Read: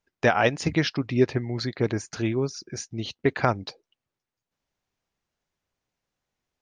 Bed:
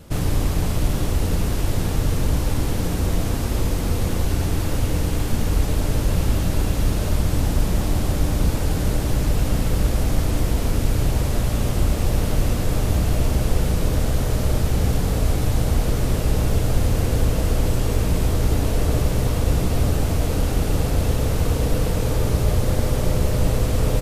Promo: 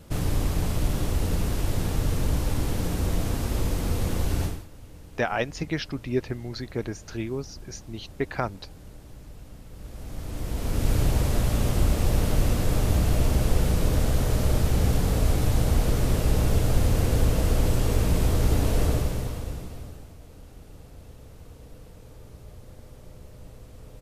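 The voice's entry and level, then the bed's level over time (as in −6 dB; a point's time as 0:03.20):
4.95 s, −5.5 dB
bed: 0:04.45 −4.5 dB
0:04.68 −24.5 dB
0:09.68 −24.5 dB
0:10.91 −2.5 dB
0:18.85 −2.5 dB
0:20.16 −26 dB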